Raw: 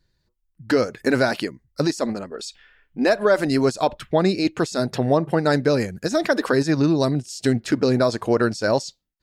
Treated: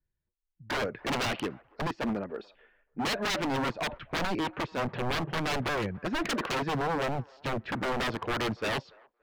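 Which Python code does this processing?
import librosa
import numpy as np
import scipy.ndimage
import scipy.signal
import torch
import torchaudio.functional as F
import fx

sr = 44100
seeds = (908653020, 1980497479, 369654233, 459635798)

y = scipy.signal.sosfilt(scipy.signal.butter(4, 2900.0, 'lowpass', fs=sr, output='sos'), x)
y = fx.notch(y, sr, hz=1300.0, q=17.0)
y = 10.0 ** (-22.0 / 20.0) * (np.abs((y / 10.0 ** (-22.0 / 20.0) + 3.0) % 4.0 - 2.0) - 1.0)
y = fx.echo_wet_bandpass(y, sr, ms=287, feedback_pct=31, hz=900.0, wet_db=-21)
y = fx.band_widen(y, sr, depth_pct=40)
y = F.gain(torch.from_numpy(y), -2.5).numpy()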